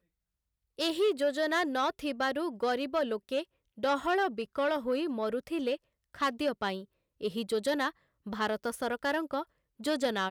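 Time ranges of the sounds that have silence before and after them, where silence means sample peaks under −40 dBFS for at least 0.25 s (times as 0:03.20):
0:00.79–0:03.43
0:03.78–0:05.76
0:06.14–0:06.82
0:07.21–0:07.90
0:08.27–0:09.43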